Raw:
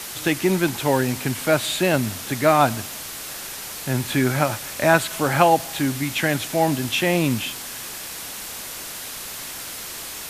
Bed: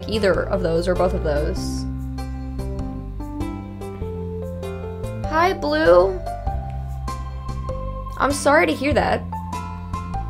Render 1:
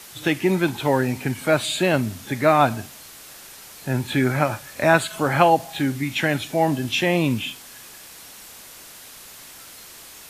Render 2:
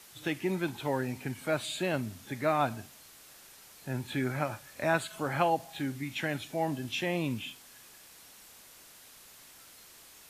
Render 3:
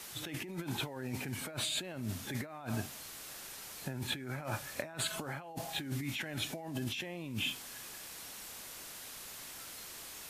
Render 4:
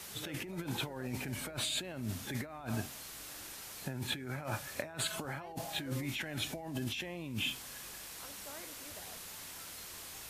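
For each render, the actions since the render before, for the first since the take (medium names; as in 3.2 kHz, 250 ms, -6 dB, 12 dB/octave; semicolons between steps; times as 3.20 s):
noise print and reduce 9 dB
trim -11.5 dB
compressor with a negative ratio -40 dBFS, ratio -1
add bed -36 dB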